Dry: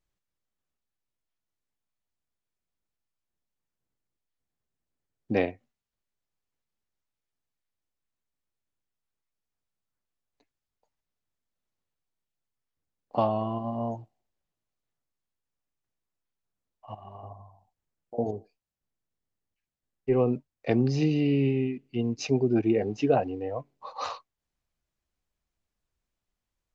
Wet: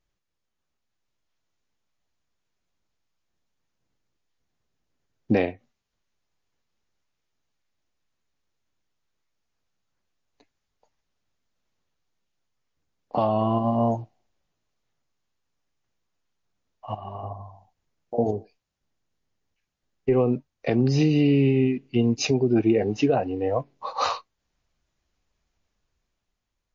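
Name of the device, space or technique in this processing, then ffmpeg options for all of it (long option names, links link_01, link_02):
low-bitrate web radio: -af "dynaudnorm=framelen=130:gausssize=13:maxgain=5dB,alimiter=limit=-15.5dB:level=0:latency=1:release=356,volume=4.5dB" -ar 16000 -c:a libmp3lame -b:a 32k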